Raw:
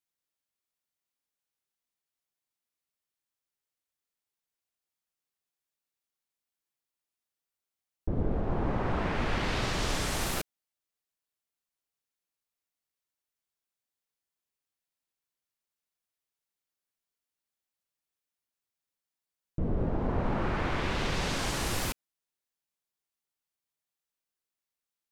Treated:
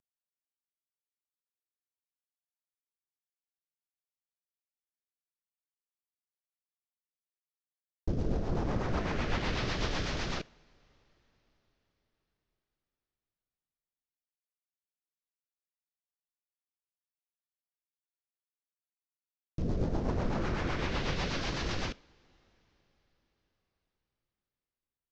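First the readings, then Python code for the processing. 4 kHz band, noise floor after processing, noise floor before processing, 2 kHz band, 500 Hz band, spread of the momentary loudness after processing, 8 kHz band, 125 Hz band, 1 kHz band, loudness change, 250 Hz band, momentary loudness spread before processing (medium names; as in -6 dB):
-2.5 dB, under -85 dBFS, under -85 dBFS, -3.0 dB, -2.5 dB, 6 LU, -9.5 dB, -1.5 dB, -4.0 dB, -2.5 dB, -1.5 dB, 6 LU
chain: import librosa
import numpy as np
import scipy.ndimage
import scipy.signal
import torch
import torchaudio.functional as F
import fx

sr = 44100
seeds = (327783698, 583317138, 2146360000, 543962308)

y = fx.cvsd(x, sr, bps=32000)
y = fx.rotary_switch(y, sr, hz=1.2, then_hz=8.0, switch_at_s=5.53)
y = fx.rev_double_slope(y, sr, seeds[0], early_s=0.48, late_s=4.9, knee_db=-18, drr_db=19.5)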